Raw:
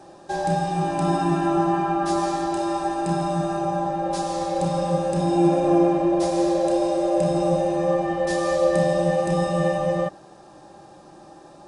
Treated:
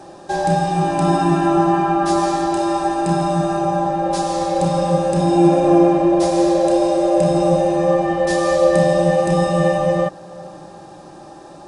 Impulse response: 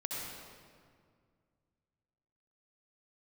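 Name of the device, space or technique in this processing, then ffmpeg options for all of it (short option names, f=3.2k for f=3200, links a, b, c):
ducked reverb: -filter_complex "[0:a]asplit=3[a][b][c];[1:a]atrim=start_sample=2205[d];[b][d]afir=irnorm=-1:irlink=0[e];[c]apad=whole_len=514694[f];[e][f]sidechaincompress=threshold=-44dB:ratio=8:attack=16:release=245,volume=-11.5dB[g];[a][g]amix=inputs=2:normalize=0,volume=5.5dB"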